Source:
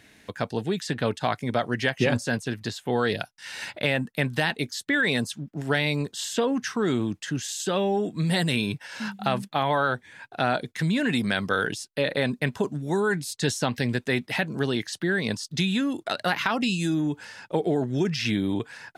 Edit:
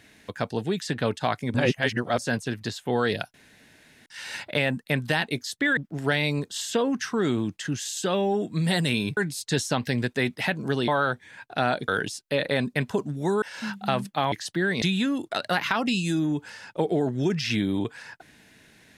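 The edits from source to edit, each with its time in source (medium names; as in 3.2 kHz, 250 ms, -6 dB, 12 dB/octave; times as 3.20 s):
1.54–2.18 s: reverse
3.34 s: insert room tone 0.72 s
5.05–5.40 s: delete
8.80–9.70 s: swap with 13.08–14.79 s
10.70–11.54 s: delete
15.29–15.57 s: delete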